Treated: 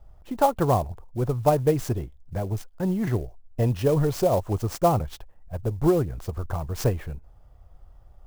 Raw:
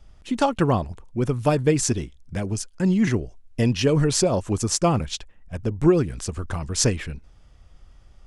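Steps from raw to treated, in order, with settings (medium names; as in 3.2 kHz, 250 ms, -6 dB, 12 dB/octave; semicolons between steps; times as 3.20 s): FFT filter 120 Hz 0 dB, 230 Hz -8 dB, 370 Hz -3 dB, 740 Hz +4 dB, 2.4 kHz -13 dB; sampling jitter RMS 0.024 ms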